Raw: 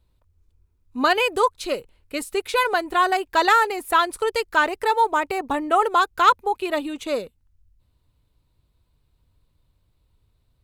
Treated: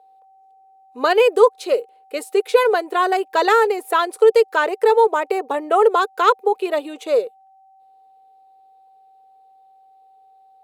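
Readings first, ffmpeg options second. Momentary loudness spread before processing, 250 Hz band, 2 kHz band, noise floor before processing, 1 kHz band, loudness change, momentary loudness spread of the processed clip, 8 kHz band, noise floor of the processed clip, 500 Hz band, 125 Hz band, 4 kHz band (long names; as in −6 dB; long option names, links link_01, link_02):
11 LU, 0.0 dB, −1.0 dB, −68 dBFS, +0.5 dB, +3.5 dB, 8 LU, −1.5 dB, −52 dBFS, +9.0 dB, can't be measured, −1.5 dB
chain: -af "aeval=exprs='val(0)+0.00282*sin(2*PI*770*n/s)':channel_layout=same,highpass=frequency=450:width_type=q:width=4.9,volume=-1.5dB"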